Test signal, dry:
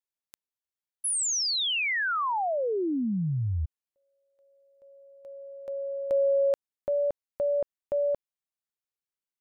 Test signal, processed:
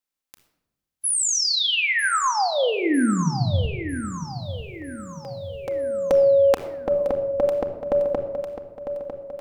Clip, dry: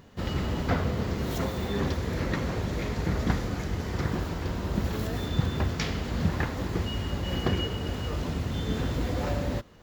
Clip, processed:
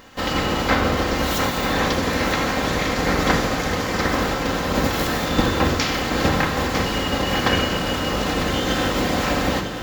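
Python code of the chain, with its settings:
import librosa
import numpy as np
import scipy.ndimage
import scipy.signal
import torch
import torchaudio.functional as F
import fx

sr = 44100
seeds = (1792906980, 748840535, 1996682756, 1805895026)

y = fx.spec_clip(x, sr, under_db=18)
y = fx.echo_feedback(y, sr, ms=951, feedback_pct=48, wet_db=-10)
y = fx.room_shoebox(y, sr, seeds[0], volume_m3=3500.0, walls='furnished', distance_m=2.1)
y = F.gain(torch.from_numpy(y), 5.5).numpy()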